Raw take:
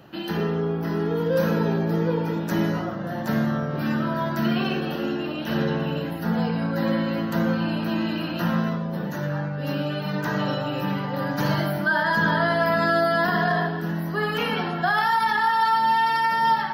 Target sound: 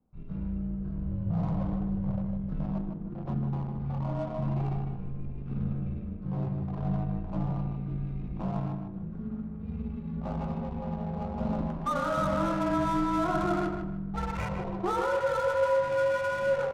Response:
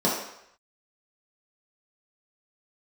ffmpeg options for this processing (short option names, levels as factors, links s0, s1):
-filter_complex "[0:a]afwtdn=0.0501,equalizer=f=1100:w=7.5:g=7.5,afreqshift=-360,adynamicsmooth=sensitivity=6.5:basefreq=740,asplit=2[s0][s1];[s1]adelay=153,lowpass=f=2900:p=1,volume=0.531,asplit=2[s2][s3];[s3]adelay=153,lowpass=f=2900:p=1,volume=0.32,asplit=2[s4][s5];[s5]adelay=153,lowpass=f=2900:p=1,volume=0.32,asplit=2[s6][s7];[s7]adelay=153,lowpass=f=2900:p=1,volume=0.32[s8];[s0][s2][s4][s6][s8]amix=inputs=5:normalize=0,volume=0.398"